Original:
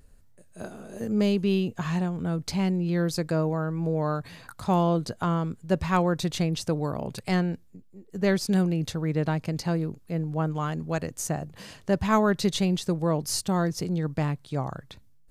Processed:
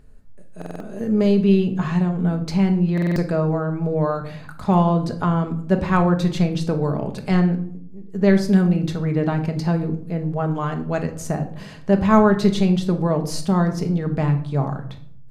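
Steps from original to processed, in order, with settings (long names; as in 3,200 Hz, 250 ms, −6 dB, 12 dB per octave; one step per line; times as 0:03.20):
high-shelf EQ 4,000 Hz −11.5 dB
rectangular room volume 900 cubic metres, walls furnished, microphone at 1.4 metres
buffer that repeats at 0:00.57/0:02.93, samples 2,048, times 4
level +4.5 dB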